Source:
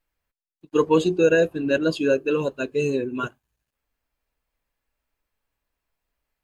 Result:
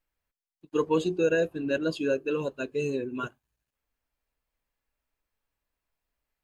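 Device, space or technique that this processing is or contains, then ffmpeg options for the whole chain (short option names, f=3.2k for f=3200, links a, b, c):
parallel compression: -filter_complex "[0:a]asplit=2[a][b];[b]acompressor=threshold=-29dB:ratio=6,volume=-7dB[c];[a][c]amix=inputs=2:normalize=0,volume=-7.5dB"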